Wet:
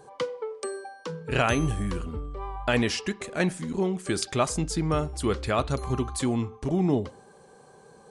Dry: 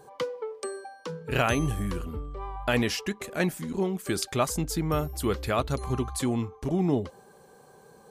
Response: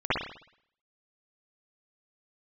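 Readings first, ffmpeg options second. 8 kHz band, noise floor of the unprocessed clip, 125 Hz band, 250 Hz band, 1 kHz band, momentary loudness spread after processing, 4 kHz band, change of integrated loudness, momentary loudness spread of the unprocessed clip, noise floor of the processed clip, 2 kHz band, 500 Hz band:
+0.5 dB, -55 dBFS, +1.0 dB, +1.5 dB, +1.0 dB, 11 LU, +1.0 dB, +1.0 dB, 11 LU, -53 dBFS, +1.0 dB, +1.0 dB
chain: -filter_complex "[0:a]asplit=2[a][b];[1:a]atrim=start_sample=2205,asetrate=61740,aresample=44100[c];[b][c]afir=irnorm=-1:irlink=0,volume=-30.5dB[d];[a][d]amix=inputs=2:normalize=0,aresample=22050,aresample=44100,volume=1dB"

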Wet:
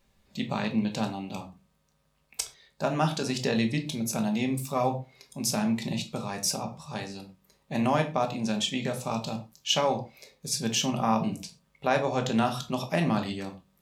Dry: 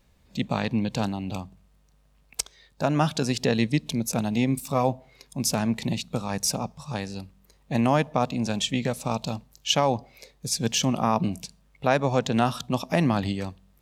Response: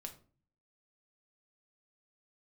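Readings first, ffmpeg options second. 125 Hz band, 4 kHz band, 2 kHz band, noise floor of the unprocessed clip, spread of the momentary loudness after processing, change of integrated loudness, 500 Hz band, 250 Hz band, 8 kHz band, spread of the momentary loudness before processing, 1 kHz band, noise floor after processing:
-5.0 dB, -1.5 dB, -2.0 dB, -62 dBFS, 12 LU, -2.5 dB, -3.0 dB, -2.5 dB, -2.5 dB, 12 LU, -2.0 dB, -70 dBFS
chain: -filter_complex "[0:a]lowshelf=f=240:g=-6.5[a];[1:a]atrim=start_sample=2205,atrim=end_sample=6174[b];[a][b]afir=irnorm=-1:irlink=0,volume=2.5dB"

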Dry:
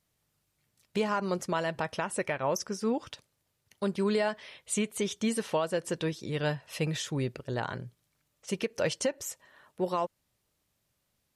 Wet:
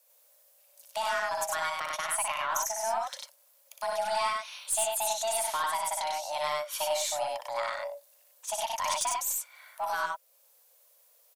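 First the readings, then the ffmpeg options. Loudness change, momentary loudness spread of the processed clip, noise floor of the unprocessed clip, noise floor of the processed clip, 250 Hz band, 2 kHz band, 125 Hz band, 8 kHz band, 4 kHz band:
+1.0 dB, 9 LU, -78 dBFS, -64 dBFS, under -25 dB, +2.5 dB, under -25 dB, +8.0 dB, +4.0 dB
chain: -filter_complex "[0:a]aemphasis=mode=production:type=50fm,asplit=2[a][b];[b]acompressor=threshold=-45dB:ratio=6,volume=0.5dB[c];[a][c]amix=inputs=2:normalize=0,afreqshift=450,aeval=exprs='(tanh(8.91*val(0)+0.1)-tanh(0.1))/8.91':c=same,aecho=1:1:61.22|96.21:0.631|0.794,volume=-3.5dB"

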